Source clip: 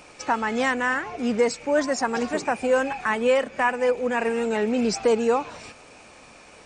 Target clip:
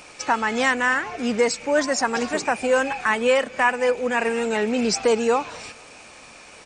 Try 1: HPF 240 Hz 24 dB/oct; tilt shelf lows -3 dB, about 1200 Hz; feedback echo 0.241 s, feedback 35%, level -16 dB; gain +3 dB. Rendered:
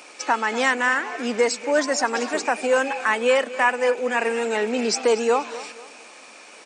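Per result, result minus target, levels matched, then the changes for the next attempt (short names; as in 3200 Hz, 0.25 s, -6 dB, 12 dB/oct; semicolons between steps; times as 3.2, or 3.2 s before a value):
echo-to-direct +11.5 dB; 250 Hz band -2.5 dB
change: feedback echo 0.241 s, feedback 35%, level -27.5 dB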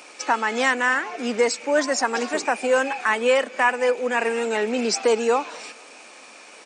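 250 Hz band -2.5 dB
remove: HPF 240 Hz 24 dB/oct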